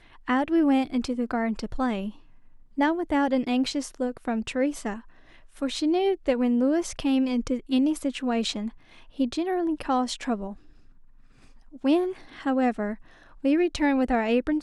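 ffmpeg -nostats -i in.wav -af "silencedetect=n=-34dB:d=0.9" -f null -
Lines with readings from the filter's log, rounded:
silence_start: 10.53
silence_end: 11.84 | silence_duration: 1.31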